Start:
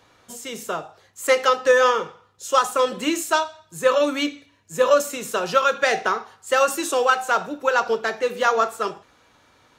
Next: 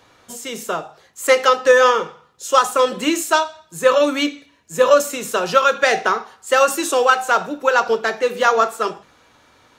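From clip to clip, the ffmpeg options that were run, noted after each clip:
-af "bandreject=f=50:t=h:w=6,bandreject=f=100:t=h:w=6,bandreject=f=150:t=h:w=6,bandreject=f=200:t=h:w=6,volume=1.58"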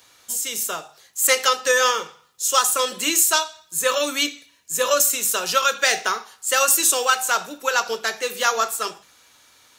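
-af "crystalizer=i=8.5:c=0,volume=0.299"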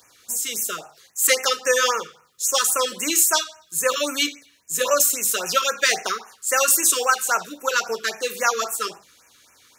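-af "afftfilt=real='re*(1-between(b*sr/1024,680*pow(4100/680,0.5+0.5*sin(2*PI*3.7*pts/sr))/1.41,680*pow(4100/680,0.5+0.5*sin(2*PI*3.7*pts/sr))*1.41))':imag='im*(1-between(b*sr/1024,680*pow(4100/680,0.5+0.5*sin(2*PI*3.7*pts/sr))/1.41,680*pow(4100/680,0.5+0.5*sin(2*PI*3.7*pts/sr))*1.41))':win_size=1024:overlap=0.75"

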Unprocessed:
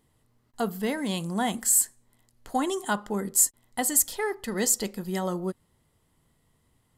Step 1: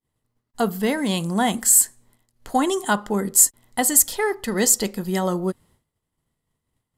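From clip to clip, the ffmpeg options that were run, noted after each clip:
-af "agate=range=0.0224:threshold=0.00158:ratio=3:detection=peak,volume=2.11"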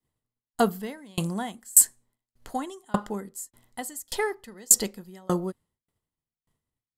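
-af "aeval=exprs='val(0)*pow(10,-33*if(lt(mod(1.7*n/s,1),2*abs(1.7)/1000),1-mod(1.7*n/s,1)/(2*abs(1.7)/1000),(mod(1.7*n/s,1)-2*abs(1.7)/1000)/(1-2*abs(1.7)/1000))/20)':c=same,volume=1.26"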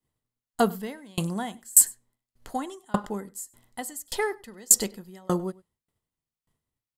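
-filter_complex "[0:a]asplit=2[s0][s1];[s1]adelay=99.13,volume=0.0708,highshelf=f=4000:g=-2.23[s2];[s0][s2]amix=inputs=2:normalize=0"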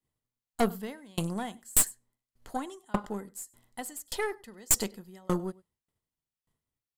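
-af "aeval=exprs='(tanh(6.31*val(0)+0.7)-tanh(0.7))/6.31':c=same"

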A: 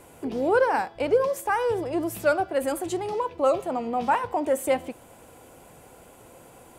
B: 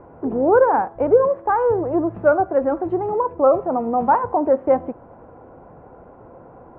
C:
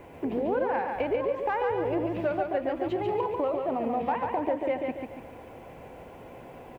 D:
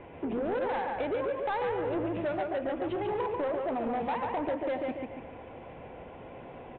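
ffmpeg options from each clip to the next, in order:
-af "lowpass=f=1300:w=0.5412,lowpass=f=1300:w=1.3066,volume=2.24"
-filter_complex "[0:a]acompressor=threshold=0.0708:ratio=6,aexciter=amount=13:drive=7.4:freq=2100,asplit=2[s0][s1];[s1]aecho=0:1:142|284|426|568|710|852:0.631|0.278|0.122|0.0537|0.0236|0.0104[s2];[s0][s2]amix=inputs=2:normalize=0,volume=0.668"
-af "aresample=8000,asoftclip=type=tanh:threshold=0.0501,aresample=44100,flanger=delay=8.2:depth=7:regen=-89:speed=1.2:shape=sinusoidal,volume=1.68"

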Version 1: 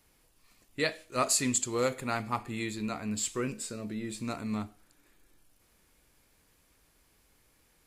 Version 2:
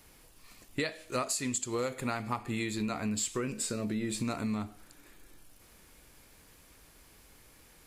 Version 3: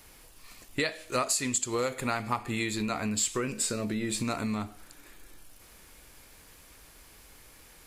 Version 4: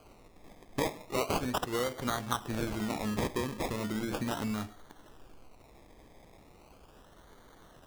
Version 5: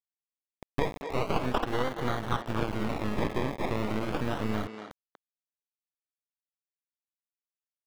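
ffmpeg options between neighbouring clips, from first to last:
-af "acompressor=threshold=0.0126:ratio=12,volume=2.66"
-af "equalizer=f=180:t=o:w=2.7:g=-4,volume=1.78"
-af "acrusher=samples=24:mix=1:aa=0.000001:lfo=1:lforange=14.4:lforate=0.37,volume=0.75"
-filter_complex "[0:a]acrusher=bits=4:dc=4:mix=0:aa=0.000001,asplit=2[s0][s1];[s1]adelay=240,highpass=300,lowpass=3400,asoftclip=type=hard:threshold=0.0422,volume=0.447[s2];[s0][s2]amix=inputs=2:normalize=0,acrossover=split=3900[s3][s4];[s4]acompressor=threshold=0.00141:ratio=4:attack=1:release=60[s5];[s3][s5]amix=inputs=2:normalize=0,volume=2.11"

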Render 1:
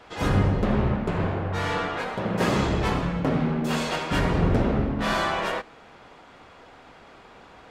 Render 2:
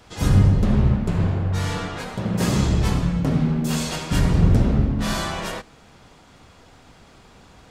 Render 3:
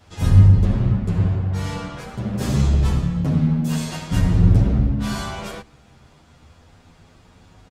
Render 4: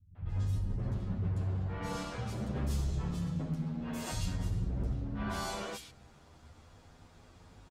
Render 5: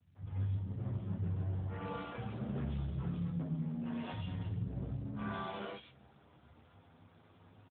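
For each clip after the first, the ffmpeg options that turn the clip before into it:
-af "bass=f=250:g=12,treble=f=4000:g=14,volume=0.631"
-filter_complex "[0:a]equalizer=f=83:t=o:w=2.3:g=7.5,asplit=2[s0][s1];[s1]adelay=9.3,afreqshift=0.29[s2];[s0][s2]amix=inputs=2:normalize=1,volume=0.891"
-filter_complex "[0:a]areverse,acompressor=threshold=0.0708:ratio=10,areverse,acrossover=split=170|2600[s0][s1][s2];[s1]adelay=150[s3];[s2]adelay=290[s4];[s0][s3][s4]amix=inputs=3:normalize=0,volume=0.501"
-filter_complex "[0:a]asplit=2[s0][s1];[s1]adelay=30,volume=0.422[s2];[s0][s2]amix=inputs=2:normalize=0,volume=0.708" -ar 8000 -c:a libopencore_amrnb -b:a 12200

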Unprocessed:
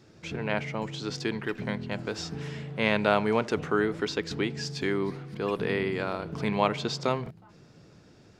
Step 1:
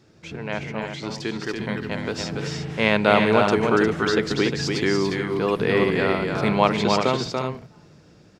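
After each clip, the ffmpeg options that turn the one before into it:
-filter_complex "[0:a]dynaudnorm=f=390:g=9:m=3.76,asplit=2[s0][s1];[s1]aecho=0:1:286|355:0.596|0.422[s2];[s0][s2]amix=inputs=2:normalize=0"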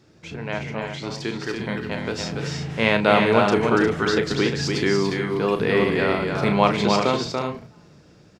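-filter_complex "[0:a]asplit=2[s0][s1];[s1]adelay=35,volume=0.355[s2];[s0][s2]amix=inputs=2:normalize=0"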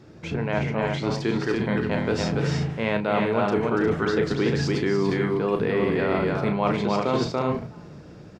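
-af "highshelf=f=2300:g=-10,areverse,acompressor=threshold=0.0398:ratio=6,areverse,volume=2.51"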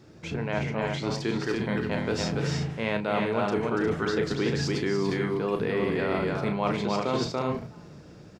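-af "highshelf=f=4300:g=7,volume=0.631"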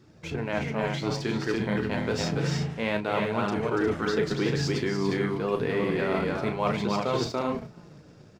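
-filter_complex "[0:a]flanger=delay=0.6:depth=9.4:regen=-48:speed=0.29:shape=triangular,asplit=2[s0][s1];[s1]aeval=exprs='sgn(val(0))*max(abs(val(0))-0.00447,0)':c=same,volume=0.708[s2];[s0][s2]amix=inputs=2:normalize=0"

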